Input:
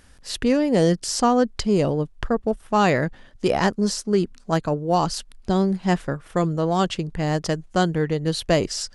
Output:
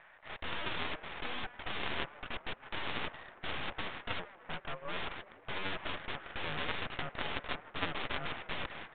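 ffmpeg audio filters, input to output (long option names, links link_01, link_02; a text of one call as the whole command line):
ffmpeg -i in.wav -filter_complex "[0:a]alimiter=limit=-12.5dB:level=0:latency=1:release=133,asettb=1/sr,asplit=3[link_01][link_02][link_03];[link_01]atrim=end=4.194[link_04];[link_02]atrim=start=4.19:end=4.97,asetpts=PTS-STARTPTS,afade=type=in:duration=0.004:curve=qsin,afade=type=out:start_time=0.776:duration=0.004:curve=qsin,acompressor=threshold=-39dB:ratio=2.5[link_05];[link_03]atrim=start=4.966[link_06];[link_04][link_05]acrossfade=duration=0.004:curve1=hsin:curve2=qsin[link_07];[link_07][link_06]acrossfade=duration=0.004:curve1=qsin:curve2=hsin,asoftclip=type=tanh:threshold=-14dB,acrusher=bits=8:mix=0:aa=0.000001,aeval=exprs='0.0266*(abs(mod(val(0)/0.0266+3,4)-2)-1)':channel_layout=same,highpass=frequency=510:width_type=q:width=0.5412,highpass=frequency=510:width_type=q:width=1.307,lowpass=frequency=2300:width_type=q:width=0.5176,lowpass=frequency=2300:width_type=q:width=0.7071,lowpass=frequency=2300:width_type=q:width=1.932,afreqshift=91,asplit=7[link_08][link_09][link_10][link_11][link_12][link_13][link_14];[link_09]adelay=156,afreqshift=-110,volume=-18.5dB[link_15];[link_10]adelay=312,afreqshift=-220,volume=-22.2dB[link_16];[link_11]adelay=468,afreqshift=-330,volume=-26dB[link_17];[link_12]adelay=624,afreqshift=-440,volume=-29.7dB[link_18];[link_13]adelay=780,afreqshift=-550,volume=-33.5dB[link_19];[link_14]adelay=936,afreqshift=-660,volume=-37.2dB[link_20];[link_08][link_15][link_16][link_17][link_18][link_19][link_20]amix=inputs=7:normalize=0,aeval=exprs='0.0422*(cos(1*acos(clip(val(0)/0.0422,-1,1)))-cos(1*PI/2))+0.0188*(cos(3*acos(clip(val(0)/0.0422,-1,1)))-cos(3*PI/2))+0.00335*(cos(8*acos(clip(val(0)/0.0422,-1,1)))-cos(8*PI/2))':channel_layout=same,volume=11dB" -ar 8000 -c:a pcm_mulaw out.wav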